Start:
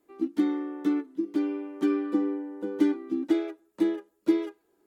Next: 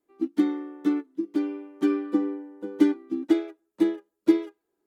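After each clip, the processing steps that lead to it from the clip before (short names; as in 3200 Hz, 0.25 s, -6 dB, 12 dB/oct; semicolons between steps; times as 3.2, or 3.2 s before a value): upward expander 1.5:1, over -45 dBFS; gain +4.5 dB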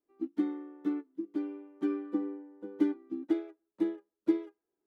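high shelf 3000 Hz -11 dB; gain -8 dB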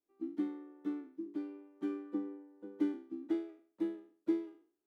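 spectral trails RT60 0.46 s; gain -6.5 dB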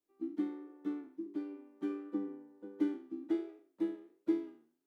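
flange 1.4 Hz, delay 9.3 ms, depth 3.9 ms, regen +88%; gain +5 dB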